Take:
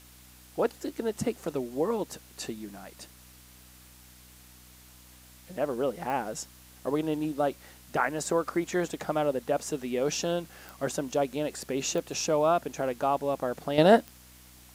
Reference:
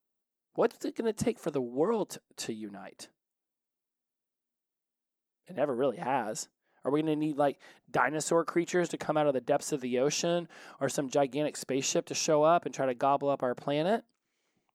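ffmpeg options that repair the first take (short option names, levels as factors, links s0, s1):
-af "adeclick=t=4,bandreject=f=62.1:t=h:w=4,bandreject=f=124.2:t=h:w=4,bandreject=f=186.3:t=h:w=4,bandreject=f=248.4:t=h:w=4,bandreject=f=310.5:t=h:w=4,afwtdn=0.002,asetnsamples=n=441:p=0,asendcmd='13.78 volume volume -10dB',volume=1"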